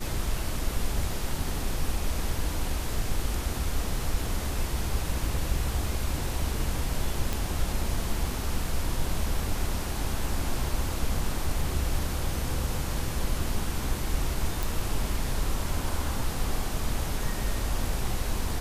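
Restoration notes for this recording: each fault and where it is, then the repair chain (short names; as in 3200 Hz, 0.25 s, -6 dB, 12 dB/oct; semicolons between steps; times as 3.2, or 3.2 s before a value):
7.33 pop
14.63 pop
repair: de-click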